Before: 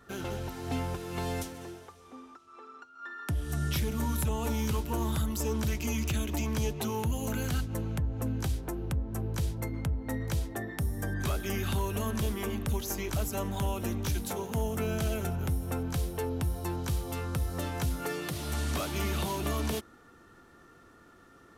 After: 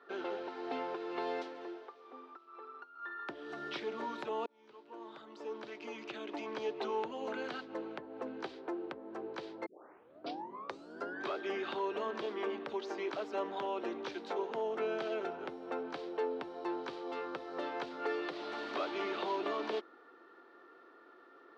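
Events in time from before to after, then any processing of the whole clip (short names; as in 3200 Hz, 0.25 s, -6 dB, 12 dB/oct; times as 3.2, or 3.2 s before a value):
4.46–6.84 fade in
9.66 tape start 1.57 s
whole clip: Chebyshev band-pass 350–4400 Hz, order 3; high shelf 2800 Hz -10.5 dB; gain +1 dB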